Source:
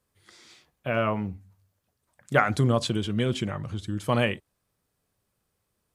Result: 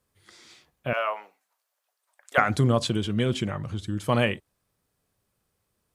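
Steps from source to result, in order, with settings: 0.93–2.38 s: high-pass 610 Hz 24 dB/octave; trim +1 dB

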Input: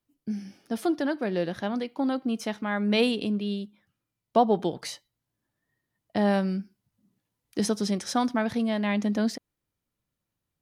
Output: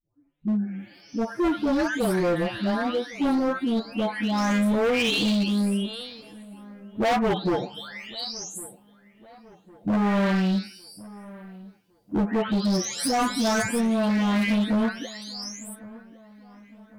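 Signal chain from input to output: delay that grows with frequency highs late, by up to 495 ms; time stretch by phase-locked vocoder 1.6×; overload inside the chain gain 28 dB; feedback echo behind a low-pass 1107 ms, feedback 45%, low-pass 2 kHz, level -20 dB; trim +8 dB

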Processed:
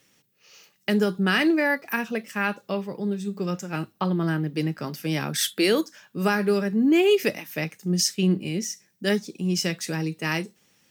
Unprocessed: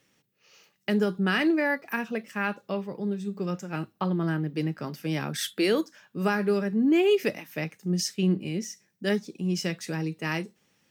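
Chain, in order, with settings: treble shelf 3.7 kHz +6.5 dB; trim +2.5 dB

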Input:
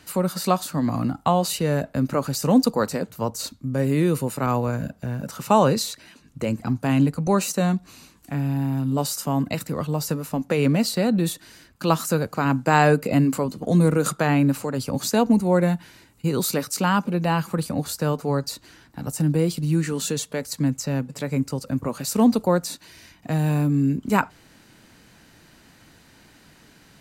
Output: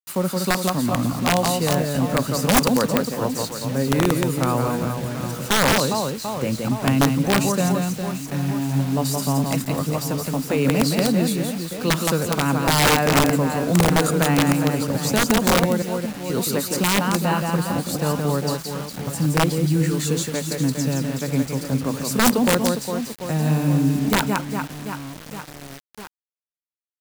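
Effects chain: 15.65–16.30 s: steep high-pass 1.9 kHz 96 dB/octave; reverse bouncing-ball echo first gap 170 ms, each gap 1.4×, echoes 5; integer overflow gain 9.5 dB; bit crusher 6-bit

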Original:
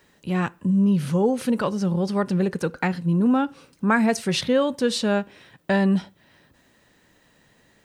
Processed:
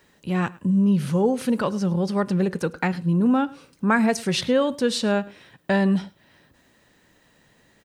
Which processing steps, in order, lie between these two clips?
delay 105 ms -22 dB

